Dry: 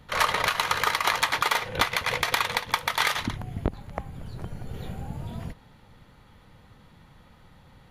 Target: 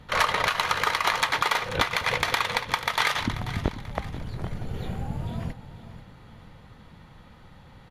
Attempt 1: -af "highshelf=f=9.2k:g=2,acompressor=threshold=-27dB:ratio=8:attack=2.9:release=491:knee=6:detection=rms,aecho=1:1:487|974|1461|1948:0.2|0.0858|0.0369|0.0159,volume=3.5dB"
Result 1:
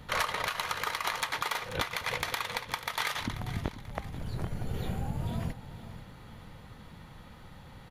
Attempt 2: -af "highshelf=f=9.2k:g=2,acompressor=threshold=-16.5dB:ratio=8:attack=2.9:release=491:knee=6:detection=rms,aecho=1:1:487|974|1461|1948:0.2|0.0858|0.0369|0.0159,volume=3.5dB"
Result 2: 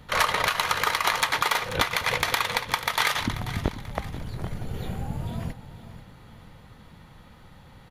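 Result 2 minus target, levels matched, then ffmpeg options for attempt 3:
8000 Hz band +3.0 dB
-af "highshelf=f=9.2k:g=-8.5,acompressor=threshold=-16.5dB:ratio=8:attack=2.9:release=491:knee=6:detection=rms,aecho=1:1:487|974|1461|1948:0.2|0.0858|0.0369|0.0159,volume=3.5dB"

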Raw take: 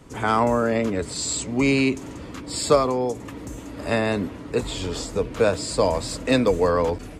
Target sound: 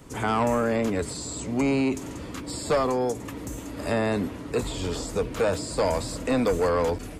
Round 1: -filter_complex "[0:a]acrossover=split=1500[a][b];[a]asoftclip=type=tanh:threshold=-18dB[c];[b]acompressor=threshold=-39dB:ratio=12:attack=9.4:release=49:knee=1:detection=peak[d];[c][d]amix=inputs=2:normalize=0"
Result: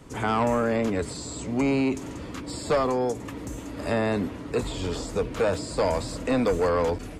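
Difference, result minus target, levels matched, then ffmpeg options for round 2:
8000 Hz band -3.0 dB
-filter_complex "[0:a]acrossover=split=1500[a][b];[a]asoftclip=type=tanh:threshold=-18dB[c];[b]acompressor=threshold=-39dB:ratio=12:attack=9.4:release=49:knee=1:detection=peak,highshelf=f=10k:g=10[d];[c][d]amix=inputs=2:normalize=0"

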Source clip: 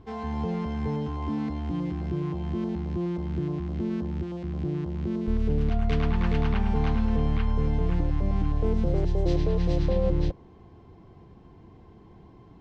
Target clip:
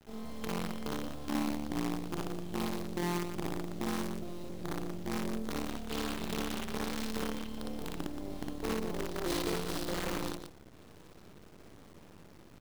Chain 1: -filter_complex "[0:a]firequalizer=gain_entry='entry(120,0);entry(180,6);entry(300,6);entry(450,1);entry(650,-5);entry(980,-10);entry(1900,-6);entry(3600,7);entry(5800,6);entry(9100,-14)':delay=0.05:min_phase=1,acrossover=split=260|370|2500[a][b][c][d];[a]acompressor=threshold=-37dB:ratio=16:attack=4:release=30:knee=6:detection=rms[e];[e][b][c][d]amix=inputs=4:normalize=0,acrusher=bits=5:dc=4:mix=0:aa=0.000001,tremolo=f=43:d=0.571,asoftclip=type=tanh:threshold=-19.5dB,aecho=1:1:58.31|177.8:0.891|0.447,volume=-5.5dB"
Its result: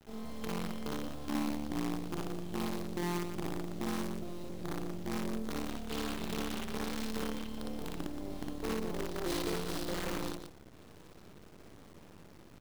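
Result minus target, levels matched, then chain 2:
soft clip: distortion +14 dB
-filter_complex "[0:a]firequalizer=gain_entry='entry(120,0);entry(180,6);entry(300,6);entry(450,1);entry(650,-5);entry(980,-10);entry(1900,-6);entry(3600,7);entry(5800,6);entry(9100,-14)':delay=0.05:min_phase=1,acrossover=split=260|370|2500[a][b][c][d];[a]acompressor=threshold=-37dB:ratio=16:attack=4:release=30:knee=6:detection=rms[e];[e][b][c][d]amix=inputs=4:normalize=0,acrusher=bits=5:dc=4:mix=0:aa=0.000001,tremolo=f=43:d=0.571,asoftclip=type=tanh:threshold=-11.5dB,aecho=1:1:58.31|177.8:0.891|0.447,volume=-5.5dB"

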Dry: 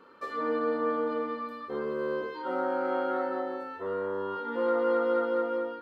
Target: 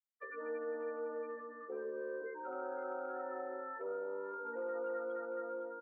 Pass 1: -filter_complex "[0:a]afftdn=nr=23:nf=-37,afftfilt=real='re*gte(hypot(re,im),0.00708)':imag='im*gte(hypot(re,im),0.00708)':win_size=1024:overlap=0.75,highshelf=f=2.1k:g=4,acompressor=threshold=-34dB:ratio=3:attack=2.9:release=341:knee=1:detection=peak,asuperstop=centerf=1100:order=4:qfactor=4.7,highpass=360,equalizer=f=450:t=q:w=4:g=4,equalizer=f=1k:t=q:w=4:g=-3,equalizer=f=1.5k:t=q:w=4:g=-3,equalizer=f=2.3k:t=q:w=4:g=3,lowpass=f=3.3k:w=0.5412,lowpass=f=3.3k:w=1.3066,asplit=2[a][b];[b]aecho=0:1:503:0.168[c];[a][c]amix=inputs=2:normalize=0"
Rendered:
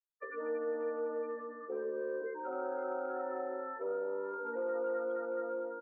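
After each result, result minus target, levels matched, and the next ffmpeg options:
compressor: peak gain reduction -5 dB; 2000 Hz band -3.0 dB
-filter_complex "[0:a]afftdn=nr=23:nf=-37,afftfilt=real='re*gte(hypot(re,im),0.00708)':imag='im*gte(hypot(re,im),0.00708)':win_size=1024:overlap=0.75,highshelf=f=2.1k:g=4,acompressor=threshold=-40.5dB:ratio=3:attack=2.9:release=341:knee=1:detection=peak,asuperstop=centerf=1100:order=4:qfactor=4.7,highpass=360,equalizer=f=450:t=q:w=4:g=4,equalizer=f=1k:t=q:w=4:g=-3,equalizer=f=1.5k:t=q:w=4:g=-3,equalizer=f=2.3k:t=q:w=4:g=3,lowpass=f=3.3k:w=0.5412,lowpass=f=3.3k:w=1.3066,asplit=2[a][b];[b]aecho=0:1:503:0.168[c];[a][c]amix=inputs=2:normalize=0"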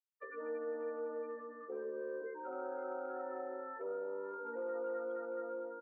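2000 Hz band -2.5 dB
-filter_complex "[0:a]afftdn=nr=23:nf=-37,afftfilt=real='re*gte(hypot(re,im),0.00708)':imag='im*gte(hypot(re,im),0.00708)':win_size=1024:overlap=0.75,highshelf=f=2.1k:g=15,acompressor=threshold=-40.5dB:ratio=3:attack=2.9:release=341:knee=1:detection=peak,asuperstop=centerf=1100:order=4:qfactor=4.7,highpass=360,equalizer=f=450:t=q:w=4:g=4,equalizer=f=1k:t=q:w=4:g=-3,equalizer=f=1.5k:t=q:w=4:g=-3,equalizer=f=2.3k:t=q:w=4:g=3,lowpass=f=3.3k:w=0.5412,lowpass=f=3.3k:w=1.3066,asplit=2[a][b];[b]aecho=0:1:503:0.168[c];[a][c]amix=inputs=2:normalize=0"

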